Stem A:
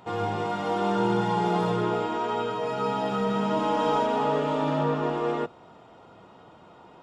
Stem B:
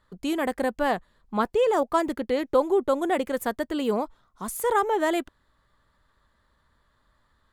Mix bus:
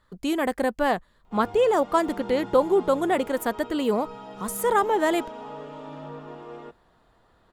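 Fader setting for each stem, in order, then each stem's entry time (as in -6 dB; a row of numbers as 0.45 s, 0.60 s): -13.5 dB, +1.5 dB; 1.25 s, 0.00 s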